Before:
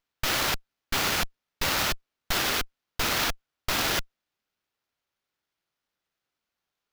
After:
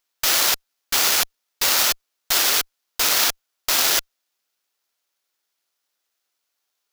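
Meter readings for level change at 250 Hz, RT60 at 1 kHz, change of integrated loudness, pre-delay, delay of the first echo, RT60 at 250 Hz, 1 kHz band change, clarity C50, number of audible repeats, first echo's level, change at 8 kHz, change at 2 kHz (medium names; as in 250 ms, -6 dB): -3.5 dB, no reverb, +8.5 dB, no reverb, no echo, no reverb, +3.0 dB, no reverb, no echo, no echo, +12.0 dB, +4.0 dB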